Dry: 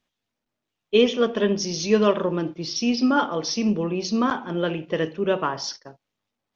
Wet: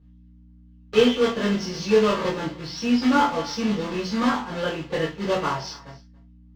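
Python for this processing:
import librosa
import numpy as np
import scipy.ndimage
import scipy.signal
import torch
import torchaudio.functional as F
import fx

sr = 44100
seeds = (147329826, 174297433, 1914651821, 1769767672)

y = fx.block_float(x, sr, bits=3)
y = fx.high_shelf(y, sr, hz=6000.0, db=6.0)
y = fx.hum_notches(y, sr, base_hz=60, count=3)
y = fx.add_hum(y, sr, base_hz=60, snr_db=28)
y = fx.air_absorb(y, sr, metres=180.0)
y = fx.doubler(y, sr, ms=21.0, db=-5.0)
y = y + 10.0 ** (-22.0 / 20.0) * np.pad(y, (int(280 * sr / 1000.0), 0))[:len(y)]
y = fx.rev_gated(y, sr, seeds[0], gate_ms=90, shape='falling', drr_db=-6.0)
y = F.gain(torch.from_numpy(y), -7.5).numpy()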